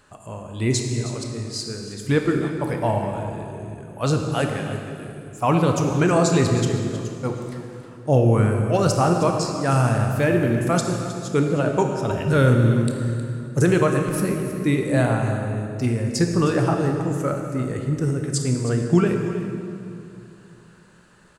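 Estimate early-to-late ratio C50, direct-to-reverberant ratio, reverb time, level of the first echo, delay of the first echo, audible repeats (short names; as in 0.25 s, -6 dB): 3.5 dB, 2.5 dB, 2.6 s, -13.5 dB, 0.314 s, 1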